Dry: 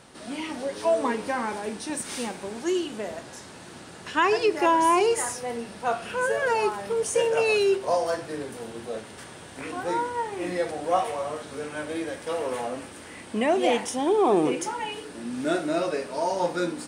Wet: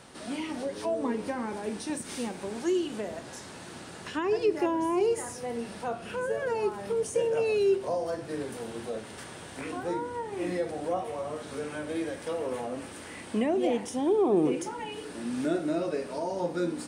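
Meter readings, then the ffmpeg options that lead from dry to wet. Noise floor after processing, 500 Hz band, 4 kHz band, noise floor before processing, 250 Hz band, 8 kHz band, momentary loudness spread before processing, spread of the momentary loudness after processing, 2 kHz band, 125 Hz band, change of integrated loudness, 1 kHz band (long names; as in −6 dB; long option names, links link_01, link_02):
−44 dBFS, −3.5 dB, −7.5 dB, −44 dBFS, −1.0 dB, −7.0 dB, 15 LU, 12 LU, −9.0 dB, 0.0 dB, −4.5 dB, −9.5 dB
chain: -filter_complex "[0:a]acrossover=split=480[link_01][link_02];[link_02]acompressor=threshold=-39dB:ratio=3[link_03];[link_01][link_03]amix=inputs=2:normalize=0"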